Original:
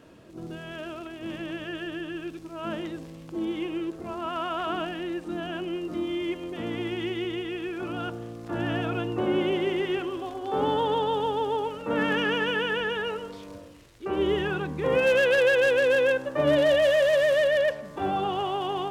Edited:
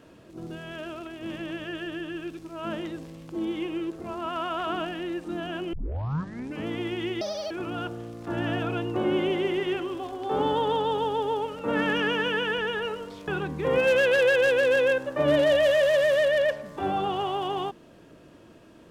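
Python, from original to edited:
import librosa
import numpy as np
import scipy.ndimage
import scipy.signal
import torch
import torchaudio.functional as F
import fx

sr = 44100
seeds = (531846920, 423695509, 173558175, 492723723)

y = fx.edit(x, sr, fx.tape_start(start_s=5.73, length_s=0.95),
    fx.speed_span(start_s=7.21, length_s=0.52, speed=1.75),
    fx.cut(start_s=13.5, length_s=0.97), tone=tone)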